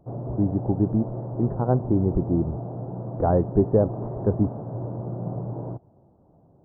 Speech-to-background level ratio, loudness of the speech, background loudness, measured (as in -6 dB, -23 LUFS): 8.0 dB, -25.0 LUFS, -33.0 LUFS